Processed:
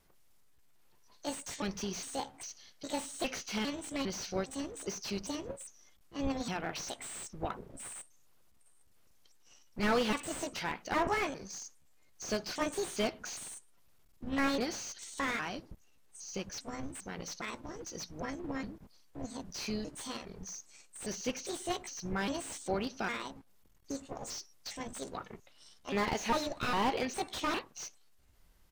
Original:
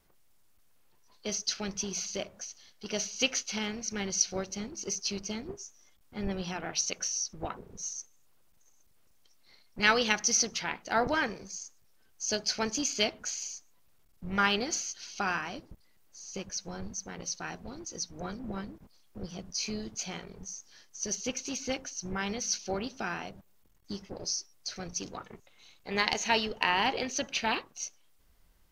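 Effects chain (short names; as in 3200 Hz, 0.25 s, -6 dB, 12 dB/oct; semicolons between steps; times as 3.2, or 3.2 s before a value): trilling pitch shifter +5.5 st, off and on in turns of 0.405 s; downsampling 32000 Hz; slew limiter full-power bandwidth 50 Hz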